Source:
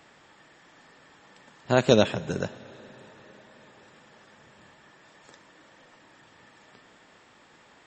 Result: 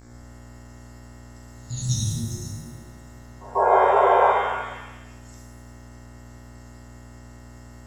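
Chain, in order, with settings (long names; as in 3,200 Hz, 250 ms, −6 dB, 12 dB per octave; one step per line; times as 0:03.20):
inverse Chebyshev band-stop filter 330–2,000 Hz, stop band 60 dB
hum with harmonics 60 Hz, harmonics 38, −53 dBFS −6 dB per octave
sound drawn into the spectrogram noise, 0:03.55–0:04.32, 380–1,100 Hz −27 dBFS
backwards echo 143 ms −23.5 dB
reverb with rising layers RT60 1 s, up +7 semitones, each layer −8 dB, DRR −3 dB
level +5.5 dB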